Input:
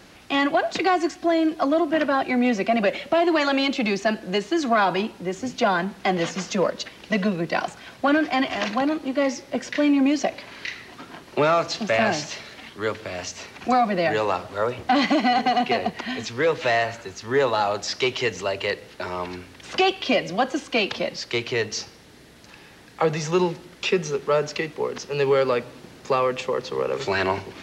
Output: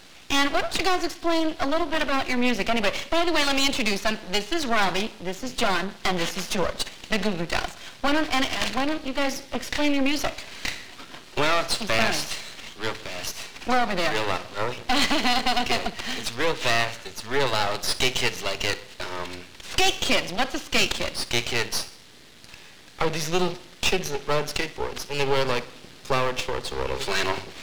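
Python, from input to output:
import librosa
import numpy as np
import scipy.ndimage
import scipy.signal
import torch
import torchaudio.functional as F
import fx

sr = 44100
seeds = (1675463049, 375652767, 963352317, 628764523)

p1 = fx.peak_eq(x, sr, hz=3700.0, db=9.5, octaves=1.7)
p2 = p1 + fx.echo_feedback(p1, sr, ms=61, feedback_pct=50, wet_db=-18.0, dry=0)
y = np.maximum(p2, 0.0)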